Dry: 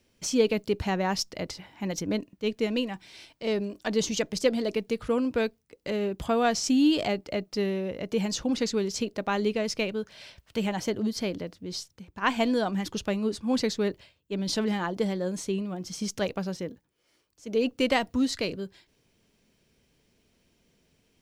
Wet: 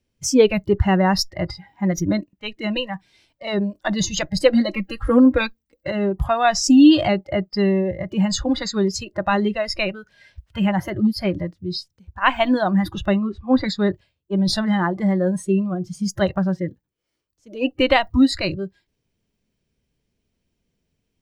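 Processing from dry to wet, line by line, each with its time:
0:04.53–0:05.87: comb filter 3.7 ms, depth 76%
0:13.17–0:13.66: low-pass filter 3,100 Hz
whole clip: noise reduction from a noise print of the clip's start 19 dB; low-shelf EQ 180 Hz +9.5 dB; level +8.5 dB

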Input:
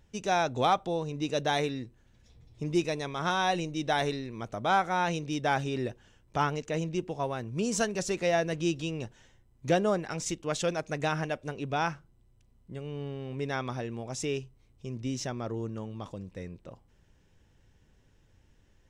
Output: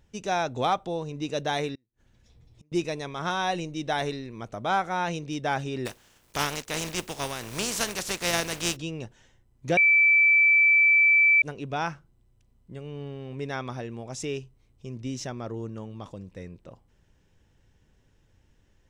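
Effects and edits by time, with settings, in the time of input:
0:01.75–0:02.72: gate with flip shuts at −41 dBFS, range −35 dB
0:05.85–0:08.75: compressing power law on the bin magnitudes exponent 0.41
0:09.77–0:11.42: beep over 2,320 Hz −15.5 dBFS

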